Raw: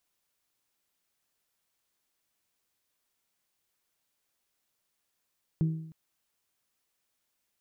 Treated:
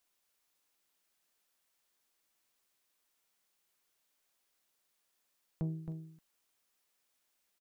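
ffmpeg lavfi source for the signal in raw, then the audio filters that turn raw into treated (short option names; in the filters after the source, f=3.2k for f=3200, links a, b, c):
-f lavfi -i "aevalsrc='0.0891*pow(10,-3*t/0.73)*sin(2*PI*160*t)+0.0224*pow(10,-3*t/0.593)*sin(2*PI*320*t)+0.00562*pow(10,-3*t/0.561)*sin(2*PI*384*t)+0.00141*pow(10,-3*t/0.525)*sin(2*PI*480*t)+0.000355*pow(10,-3*t/0.482)*sin(2*PI*640*t)':d=0.31:s=44100"
-filter_complex "[0:a]asoftclip=type=tanh:threshold=-23.5dB,equalizer=f=92:t=o:w=2:g=-8.5,asplit=2[a][b];[b]aecho=0:1:268:0.447[c];[a][c]amix=inputs=2:normalize=0"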